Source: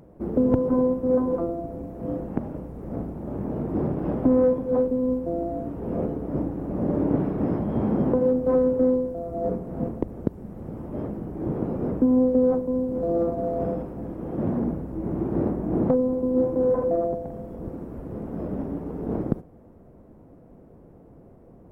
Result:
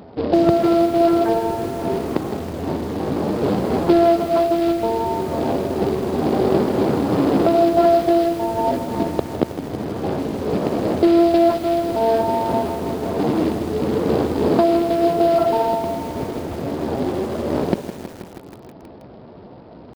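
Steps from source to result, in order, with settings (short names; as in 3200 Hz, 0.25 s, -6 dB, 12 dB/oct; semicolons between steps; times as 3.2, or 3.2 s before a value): HPF 56 Hz 12 dB/oct; in parallel at 0 dB: compressor 12:1, threshold -30 dBFS, peak gain reduction 15.5 dB; on the sum: pitch shift +3.5 st; short-mantissa float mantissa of 2-bit; analogue delay 0.274 s, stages 1024, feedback 67%, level -21.5 dB; speed mistake 44.1 kHz file played as 48 kHz; downsampling 11025 Hz; lo-fi delay 0.16 s, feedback 80%, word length 6-bit, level -11.5 dB; gain +3.5 dB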